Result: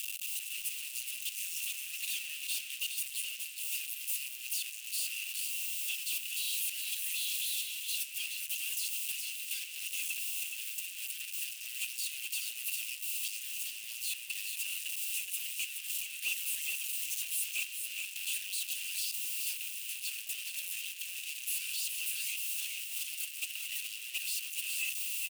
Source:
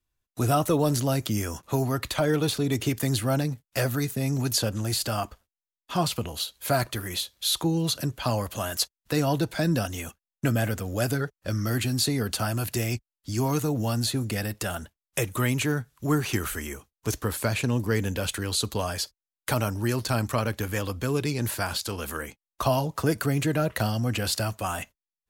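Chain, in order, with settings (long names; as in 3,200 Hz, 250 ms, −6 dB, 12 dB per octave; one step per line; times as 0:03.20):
sign of each sample alone
first difference
in parallel at +2 dB: brickwall limiter −32.5 dBFS, peak gain reduction 11 dB
on the sum: four-pole ladder high-pass 2,600 Hz, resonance 85%
hard clipping −28.5 dBFS, distortion −27 dB
parametric band 8,800 Hz +5 dB 0.3 octaves
single-tap delay 421 ms −6 dB
on a send at −22.5 dB: convolution reverb RT60 0.40 s, pre-delay 3 ms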